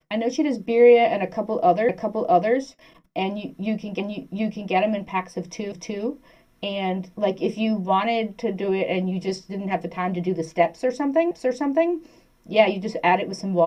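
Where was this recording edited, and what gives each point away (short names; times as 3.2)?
1.89 repeat of the last 0.66 s
4 repeat of the last 0.73 s
5.72 repeat of the last 0.3 s
11.31 repeat of the last 0.61 s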